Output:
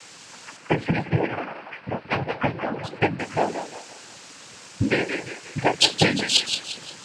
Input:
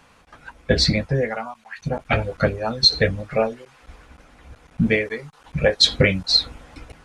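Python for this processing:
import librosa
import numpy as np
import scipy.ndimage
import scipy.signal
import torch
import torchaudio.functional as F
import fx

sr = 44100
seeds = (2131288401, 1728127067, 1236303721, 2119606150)

y = fx.dmg_noise_colour(x, sr, seeds[0], colour='white', level_db=-38.0)
y = fx.steep_lowpass(y, sr, hz=2600.0, slope=36, at=(0.56, 3.19))
y = fx.echo_thinned(y, sr, ms=176, feedback_pct=44, hz=420.0, wet_db=-7)
y = fx.noise_vocoder(y, sr, seeds[1], bands=8)
y = y * librosa.db_to_amplitude(-2.5)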